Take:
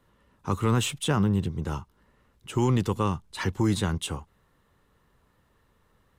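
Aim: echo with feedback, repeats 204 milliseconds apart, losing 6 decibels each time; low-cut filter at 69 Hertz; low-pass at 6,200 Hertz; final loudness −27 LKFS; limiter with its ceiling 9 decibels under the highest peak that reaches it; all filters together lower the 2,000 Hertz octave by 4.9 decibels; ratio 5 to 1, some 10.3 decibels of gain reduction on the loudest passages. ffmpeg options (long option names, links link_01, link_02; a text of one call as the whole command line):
ffmpeg -i in.wav -af "highpass=69,lowpass=6200,equalizer=frequency=2000:width_type=o:gain=-7,acompressor=threshold=-31dB:ratio=5,alimiter=level_in=5dB:limit=-24dB:level=0:latency=1,volume=-5dB,aecho=1:1:204|408|612|816|1020|1224:0.501|0.251|0.125|0.0626|0.0313|0.0157,volume=11.5dB" out.wav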